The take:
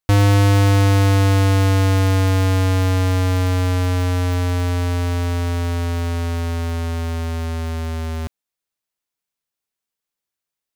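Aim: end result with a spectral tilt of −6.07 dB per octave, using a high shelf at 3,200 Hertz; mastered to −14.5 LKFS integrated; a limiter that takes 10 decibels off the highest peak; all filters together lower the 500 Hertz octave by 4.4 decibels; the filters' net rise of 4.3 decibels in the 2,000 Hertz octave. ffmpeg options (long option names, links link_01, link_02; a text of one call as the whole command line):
ffmpeg -i in.wav -af "equalizer=frequency=500:width_type=o:gain=-5.5,equalizer=frequency=2000:width_type=o:gain=8,highshelf=frequency=3200:gain=-7,volume=9.5dB,alimiter=limit=-10dB:level=0:latency=1" out.wav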